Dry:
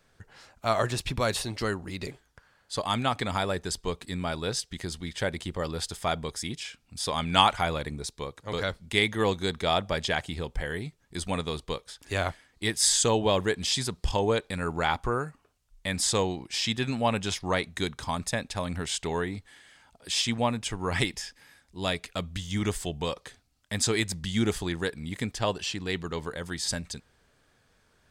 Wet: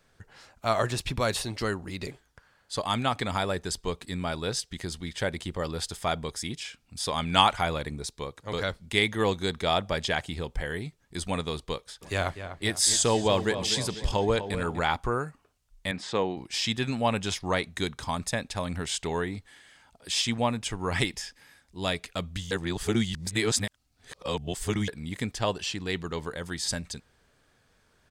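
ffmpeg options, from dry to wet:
-filter_complex "[0:a]asplit=3[s0][s1][s2];[s0]afade=t=out:st=12.01:d=0.02[s3];[s1]asplit=2[s4][s5];[s5]adelay=247,lowpass=f=2500:p=1,volume=0.316,asplit=2[s6][s7];[s7]adelay=247,lowpass=f=2500:p=1,volume=0.53,asplit=2[s8][s9];[s9]adelay=247,lowpass=f=2500:p=1,volume=0.53,asplit=2[s10][s11];[s11]adelay=247,lowpass=f=2500:p=1,volume=0.53,asplit=2[s12][s13];[s13]adelay=247,lowpass=f=2500:p=1,volume=0.53,asplit=2[s14][s15];[s15]adelay=247,lowpass=f=2500:p=1,volume=0.53[s16];[s4][s6][s8][s10][s12][s14][s16]amix=inputs=7:normalize=0,afade=t=in:st=12.01:d=0.02,afade=t=out:st=14.79:d=0.02[s17];[s2]afade=t=in:st=14.79:d=0.02[s18];[s3][s17][s18]amix=inputs=3:normalize=0,asettb=1/sr,asplit=3[s19][s20][s21];[s19]atrim=end=15.914[s22];[s20]atrim=start=15.91:end=16.37,asetpts=PTS-STARTPTS,afade=t=in:d=0.004:c=qsin,afade=t=out:st=0.456:d=0.004:c=qsin,highpass=170,lowpass=2700[s23];[s21]atrim=start=16.366[s24];[s22][s23]acrossfade=d=0.004:c1=hsin:c2=qsin[s25];[s25][s24]acrossfade=d=0.004:c1=qsin:c2=hsin,asplit=3[s26][s27][s28];[s26]atrim=end=22.512[s29];[s27]atrim=start=22.508:end=24.882,asetpts=PTS-STARTPTS,areverse[s30];[s28]atrim=start=24.878[s31];[s29][s30]acrossfade=d=0.004:c1=hsin:c2=hsin[s32];[s32][s31]acrossfade=d=0.004:c1=hsin:c2=hsin"

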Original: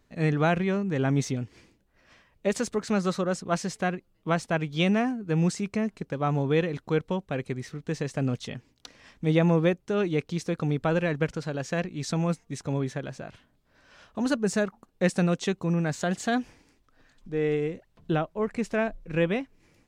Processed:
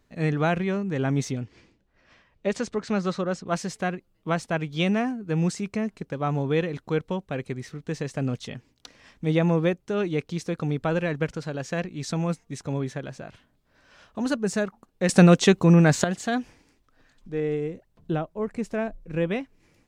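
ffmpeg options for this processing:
-filter_complex "[0:a]asettb=1/sr,asplit=3[s0][s1][s2];[s0]atrim=end=1.404[s3];[s1]atrim=start=1.4:end=3.47,asetpts=PTS-STARTPTS,afade=t=in:d=0.004:c=qsin,afade=t=out:st=2.066:d=0.004:c=qsin,lowpass=5800[s4];[s2]atrim=start=3.466[s5];[s3][s4]acrossfade=d=0.004:c1=hsin:c2=qsin[s6];[s6][s5]acrossfade=d=0.004:c1=qsin:c2=hsin,asettb=1/sr,asplit=3[s7][s8][s9];[s7]atrim=end=17.404[s10];[s8]atrim=start=17.4:end=19.31,asetpts=PTS-STARTPTS,afade=t=in:d=0.004:c=qsin,afade=t=out:st=1.906:d=0.004:c=qsin,equalizer=f=2600:w=0.4:g=-5.5[s11];[s9]atrim=start=19.306[s12];[s10][s11]acrossfade=d=0.004:c1=hsin:c2=qsin[s13];[s13][s12]acrossfade=d=0.004:c1=qsin:c2=hsin,asplit=3[s14][s15][s16];[s14]atrim=end=15.092[s17];[s15]atrim=start=15.088:end=16.042,asetpts=PTS-STARTPTS,volume=3.16[s18];[s16]atrim=start=16.038[s19];[s17][s18]acrossfade=d=0.004:c1=hsin:c2=hsin[s20];[s20][s19]acrossfade=d=0.004:c1=hsin:c2=hsin"

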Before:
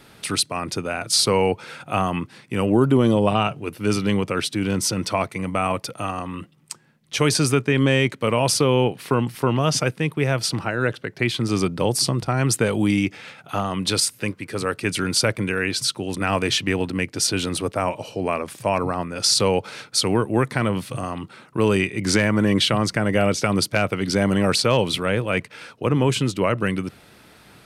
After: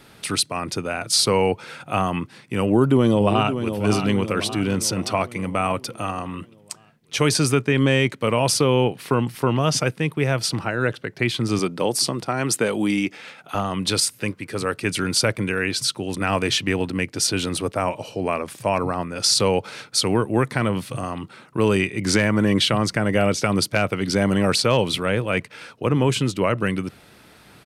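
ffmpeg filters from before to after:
-filter_complex "[0:a]asplit=2[s0][s1];[s1]afade=t=in:st=2.63:d=0.01,afade=t=out:st=3.75:d=0.01,aecho=0:1:570|1140|1710|2280|2850|3420:0.354813|0.195147|0.107331|0.0590321|0.0324676|0.0178572[s2];[s0][s2]amix=inputs=2:normalize=0,asettb=1/sr,asplit=3[s3][s4][s5];[s3]atrim=end=11.594[s6];[s4]atrim=start=11.59:end=13.55,asetpts=PTS-STARTPTS,afade=t=in:d=0.004:c=qsin,afade=t=out:st=1.956:d=0.004:c=qsin,highpass=200[s7];[s5]atrim=start=13.546[s8];[s6][s7]acrossfade=d=0.004:c1=hsin:c2=qsin[s9];[s9][s8]acrossfade=d=0.004:c1=qsin:c2=hsin"

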